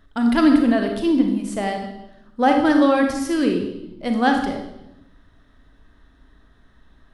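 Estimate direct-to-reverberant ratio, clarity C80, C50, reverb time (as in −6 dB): 3.0 dB, 8.0 dB, 5.0 dB, 0.85 s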